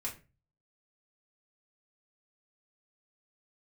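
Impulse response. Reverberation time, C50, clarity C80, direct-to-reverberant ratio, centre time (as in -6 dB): 0.30 s, 11.0 dB, 17.5 dB, -3.5 dB, 17 ms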